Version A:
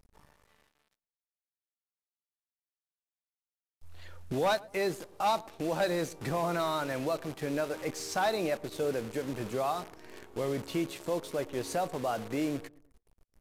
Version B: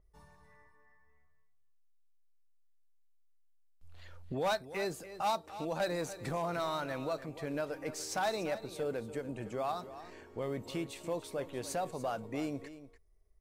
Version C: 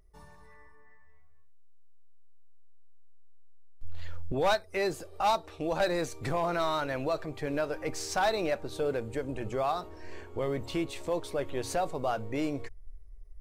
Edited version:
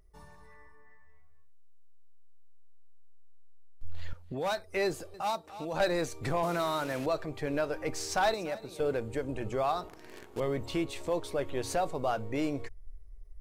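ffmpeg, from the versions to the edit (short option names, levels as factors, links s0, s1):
-filter_complex "[1:a]asplit=3[s0][s1][s2];[0:a]asplit=2[s3][s4];[2:a]asplit=6[s5][s6][s7][s8][s9][s10];[s5]atrim=end=4.132[s11];[s0]atrim=start=4.128:end=4.572[s12];[s6]atrim=start=4.568:end=5.142[s13];[s1]atrim=start=5.138:end=5.742[s14];[s7]atrim=start=5.738:end=6.432[s15];[s3]atrim=start=6.428:end=7.062[s16];[s8]atrim=start=7.058:end=8.342[s17];[s2]atrim=start=8.338:end=8.802[s18];[s9]atrim=start=8.798:end=9.882[s19];[s4]atrim=start=9.878:end=10.402[s20];[s10]atrim=start=10.398[s21];[s11][s12]acrossfade=d=0.004:c1=hsin:c2=hsin[s22];[s22][s13]acrossfade=d=0.004:c1=hsin:c2=hsin[s23];[s23][s14]acrossfade=d=0.004:c1=hsin:c2=hsin[s24];[s24][s15]acrossfade=d=0.004:c1=hsin:c2=hsin[s25];[s25][s16]acrossfade=d=0.004:c1=hsin:c2=hsin[s26];[s26][s17]acrossfade=d=0.004:c1=hsin:c2=hsin[s27];[s27][s18]acrossfade=d=0.004:c1=hsin:c2=hsin[s28];[s28][s19]acrossfade=d=0.004:c1=hsin:c2=hsin[s29];[s29][s20]acrossfade=d=0.004:c1=hsin:c2=hsin[s30];[s30][s21]acrossfade=d=0.004:c1=hsin:c2=hsin"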